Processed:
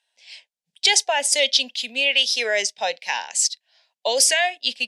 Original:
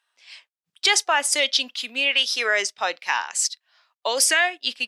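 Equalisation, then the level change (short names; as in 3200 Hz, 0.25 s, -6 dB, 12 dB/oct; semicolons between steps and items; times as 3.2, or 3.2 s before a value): LPF 9900 Hz 12 dB/oct; fixed phaser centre 330 Hz, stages 6; +4.0 dB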